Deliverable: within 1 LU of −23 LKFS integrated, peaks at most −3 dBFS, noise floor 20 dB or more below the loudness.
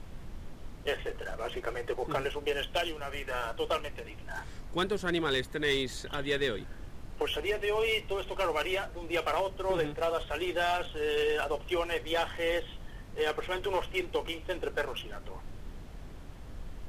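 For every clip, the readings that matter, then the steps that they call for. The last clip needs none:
share of clipped samples 0.5%; peaks flattened at −22.0 dBFS; background noise floor −46 dBFS; target noise floor −53 dBFS; integrated loudness −32.5 LKFS; sample peak −22.0 dBFS; target loudness −23.0 LKFS
→ clipped peaks rebuilt −22 dBFS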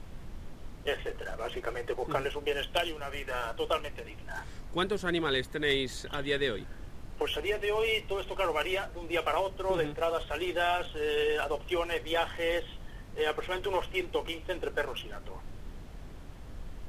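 share of clipped samples 0.0%; background noise floor −46 dBFS; target noise floor −53 dBFS
→ noise reduction from a noise print 7 dB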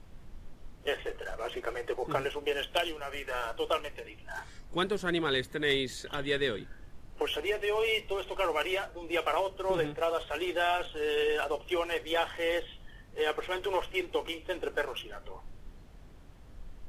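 background noise floor −51 dBFS; target noise floor −52 dBFS
→ noise reduction from a noise print 6 dB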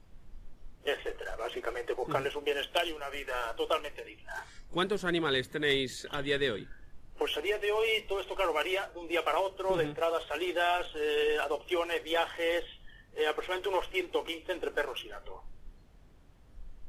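background noise floor −56 dBFS; integrated loudness −32.0 LKFS; sample peak −13.0 dBFS; target loudness −23.0 LKFS
→ level +9 dB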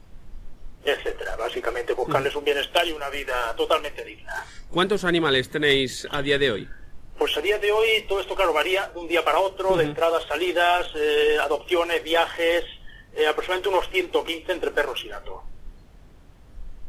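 integrated loudness −23.0 LKFS; sample peak −4.0 dBFS; background noise floor −47 dBFS

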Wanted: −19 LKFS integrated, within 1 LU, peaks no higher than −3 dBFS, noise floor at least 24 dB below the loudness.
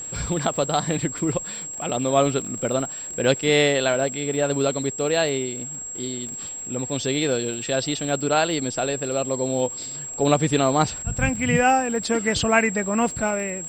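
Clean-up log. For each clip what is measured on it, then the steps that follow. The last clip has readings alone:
crackle rate 55 per second; interfering tone 7,600 Hz; level of the tone −31 dBFS; integrated loudness −23.0 LKFS; sample peak −5.0 dBFS; target loudness −19.0 LKFS
→ click removal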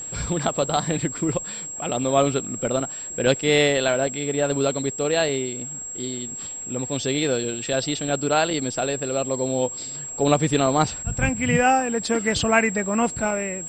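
crackle rate 0.37 per second; interfering tone 7,600 Hz; level of the tone −31 dBFS
→ notch filter 7,600 Hz, Q 30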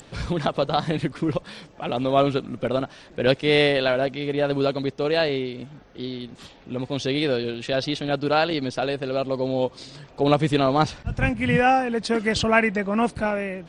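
interfering tone none found; integrated loudness −23.5 LKFS; sample peak −5.5 dBFS; target loudness −19.0 LKFS
→ level +4.5 dB
brickwall limiter −3 dBFS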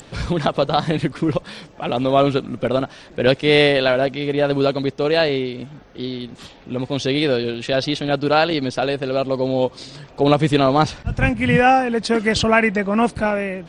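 integrated loudness −19.0 LKFS; sample peak −3.0 dBFS; background noise floor −44 dBFS

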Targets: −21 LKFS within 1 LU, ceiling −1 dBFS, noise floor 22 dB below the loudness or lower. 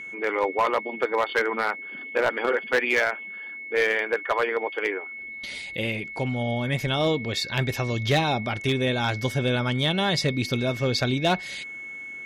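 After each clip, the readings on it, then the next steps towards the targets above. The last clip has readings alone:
share of clipped samples 0.6%; peaks flattened at −15.0 dBFS; interfering tone 2,200 Hz; level of the tone −35 dBFS; integrated loudness −25.5 LKFS; sample peak −15.0 dBFS; target loudness −21.0 LKFS
→ clipped peaks rebuilt −15 dBFS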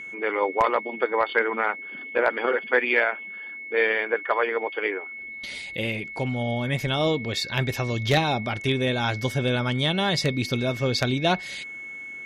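share of clipped samples 0.0%; interfering tone 2,200 Hz; level of the tone −35 dBFS
→ notch filter 2,200 Hz, Q 30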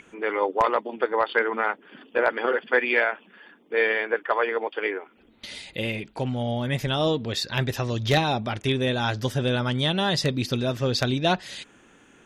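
interfering tone none found; integrated loudness −25.0 LKFS; sample peak −6.0 dBFS; target loudness −21.0 LKFS
→ level +4 dB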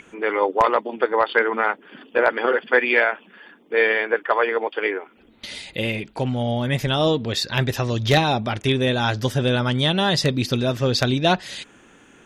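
integrated loudness −21.0 LKFS; sample peak −2.0 dBFS; background noise floor −52 dBFS

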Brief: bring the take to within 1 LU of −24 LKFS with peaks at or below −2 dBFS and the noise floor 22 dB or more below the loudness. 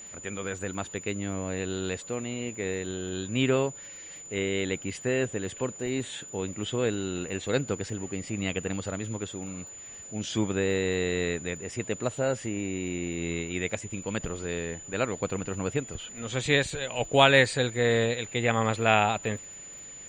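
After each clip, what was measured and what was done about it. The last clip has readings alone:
crackle rate 30 per second; interfering tone 7,000 Hz; level of the tone −42 dBFS; integrated loudness −29.0 LKFS; sample peak −4.5 dBFS; target loudness −24.0 LKFS
→ click removal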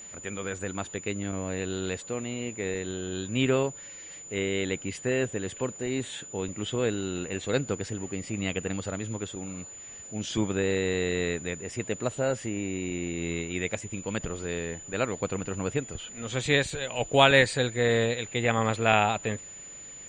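crackle rate 0.050 per second; interfering tone 7,000 Hz; level of the tone −42 dBFS
→ notch filter 7,000 Hz, Q 30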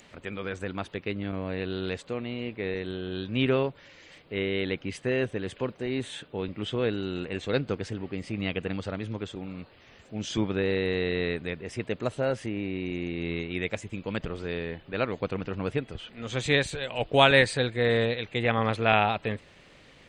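interfering tone none found; integrated loudness −29.0 LKFS; sample peak −4.5 dBFS; target loudness −24.0 LKFS
→ level +5 dB
brickwall limiter −2 dBFS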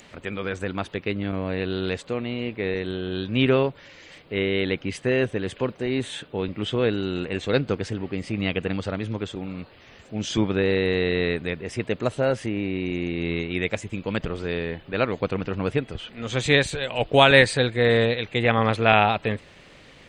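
integrated loudness −24.5 LKFS; sample peak −2.0 dBFS; background noise floor −50 dBFS

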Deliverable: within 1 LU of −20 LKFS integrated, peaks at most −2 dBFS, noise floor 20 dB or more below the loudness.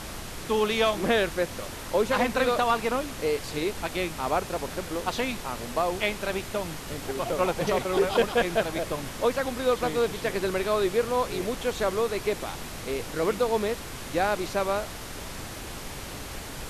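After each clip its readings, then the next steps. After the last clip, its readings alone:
background noise floor −39 dBFS; target noise floor −48 dBFS; integrated loudness −28.0 LKFS; sample peak −12.0 dBFS; target loudness −20.0 LKFS
→ noise reduction from a noise print 9 dB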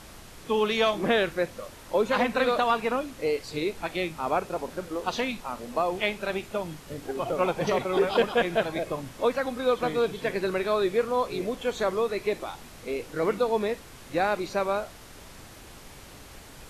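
background noise floor −47 dBFS; target noise floor −48 dBFS
→ noise reduction from a noise print 6 dB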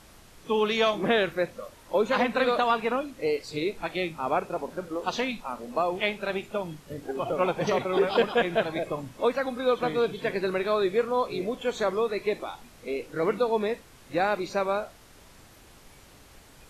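background noise floor −53 dBFS; integrated loudness −27.5 LKFS; sample peak −12.5 dBFS; target loudness −20.0 LKFS
→ level +7.5 dB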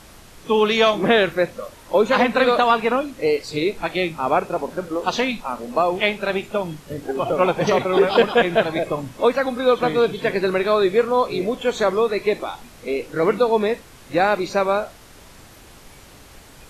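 integrated loudness −20.0 LKFS; sample peak −5.0 dBFS; background noise floor −46 dBFS

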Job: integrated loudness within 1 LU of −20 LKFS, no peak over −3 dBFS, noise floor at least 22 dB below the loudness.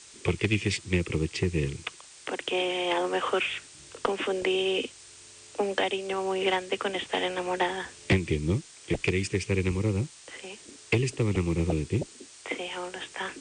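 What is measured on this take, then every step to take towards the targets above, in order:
background noise floor −50 dBFS; target noise floor −51 dBFS; integrated loudness −29.0 LKFS; sample peak −13.0 dBFS; target loudness −20.0 LKFS
→ broadband denoise 6 dB, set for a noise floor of −50 dBFS
level +9 dB

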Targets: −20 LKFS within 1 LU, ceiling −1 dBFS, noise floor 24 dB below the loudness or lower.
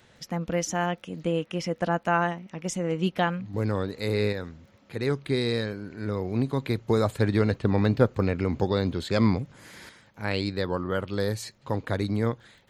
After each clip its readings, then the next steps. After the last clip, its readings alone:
crackle rate 19 per second; integrated loudness −27.5 LKFS; sample peak −7.5 dBFS; target loudness −20.0 LKFS
→ click removal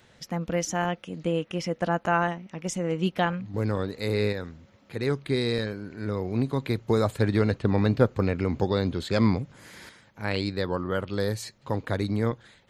crackle rate 0.079 per second; integrated loudness −27.5 LKFS; sample peak −7.5 dBFS; target loudness −20.0 LKFS
→ level +7.5 dB
brickwall limiter −1 dBFS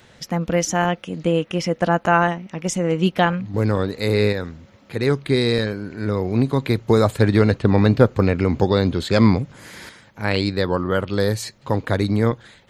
integrated loudness −20.0 LKFS; sample peak −1.0 dBFS; background noise floor −51 dBFS

